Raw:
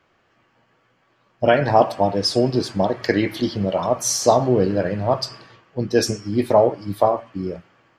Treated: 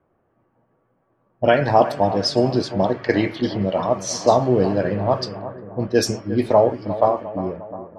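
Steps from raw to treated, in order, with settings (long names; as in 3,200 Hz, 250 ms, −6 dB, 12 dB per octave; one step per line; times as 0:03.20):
low-pass that shuts in the quiet parts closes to 770 Hz, open at −13.5 dBFS
bucket-brigade delay 354 ms, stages 4,096, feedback 58%, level −13.5 dB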